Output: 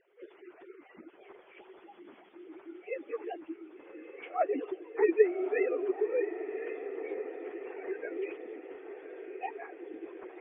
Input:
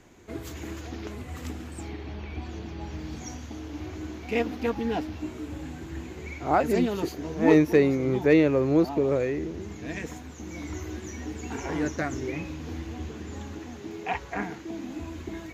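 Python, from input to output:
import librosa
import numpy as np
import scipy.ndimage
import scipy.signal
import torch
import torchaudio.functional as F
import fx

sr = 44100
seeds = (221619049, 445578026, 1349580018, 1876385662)

y = fx.sine_speech(x, sr)
y = fx.echo_diffused(y, sr, ms=1717, feedback_pct=62, wet_db=-11)
y = fx.stretch_vocoder_free(y, sr, factor=0.67)
y = y * librosa.db_to_amplitude(-4.0)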